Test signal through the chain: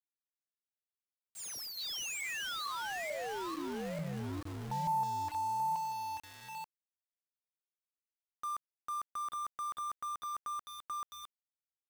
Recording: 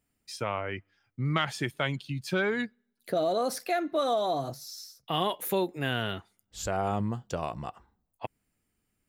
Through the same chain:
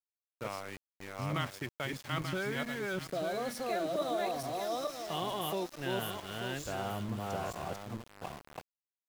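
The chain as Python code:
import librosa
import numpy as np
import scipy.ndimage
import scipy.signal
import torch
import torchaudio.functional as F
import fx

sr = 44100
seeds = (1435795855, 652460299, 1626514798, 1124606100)

y = fx.reverse_delay_fb(x, sr, ms=443, feedback_pct=48, wet_db=-0.5)
y = fx.env_lowpass(y, sr, base_hz=1100.0, full_db=-24.5)
y = np.where(np.abs(y) >= 10.0 ** (-34.0 / 20.0), y, 0.0)
y = y * 10.0 ** (-8.5 / 20.0)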